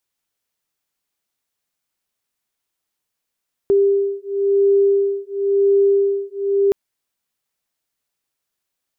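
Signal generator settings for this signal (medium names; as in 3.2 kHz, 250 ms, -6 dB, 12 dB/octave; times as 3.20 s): beating tones 397 Hz, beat 0.96 Hz, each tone -16.5 dBFS 3.02 s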